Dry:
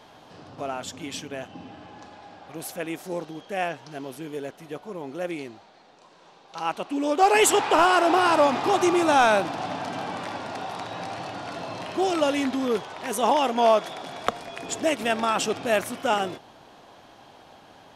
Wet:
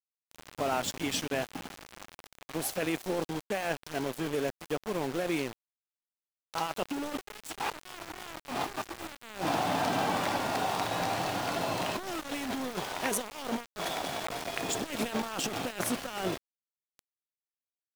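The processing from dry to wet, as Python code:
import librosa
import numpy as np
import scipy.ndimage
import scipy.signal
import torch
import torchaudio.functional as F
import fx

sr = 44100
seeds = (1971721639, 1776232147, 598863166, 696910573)

y = fx.over_compress(x, sr, threshold_db=-31.0, ratio=-1.0)
y = np.where(np.abs(y) >= 10.0 ** (-32.0 / 20.0), y, 0.0)
y = y * librosa.db_to_amplitude(-2.5)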